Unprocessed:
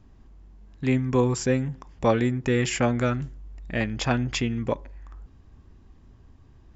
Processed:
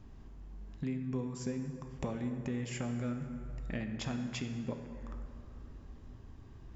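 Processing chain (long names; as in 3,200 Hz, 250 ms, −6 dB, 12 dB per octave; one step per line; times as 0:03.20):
dynamic equaliser 190 Hz, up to +8 dB, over −37 dBFS, Q 0.8
downward compressor 10 to 1, threshold −36 dBFS, peak gain reduction 23.5 dB
dense smooth reverb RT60 2.8 s, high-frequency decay 0.5×, DRR 5.5 dB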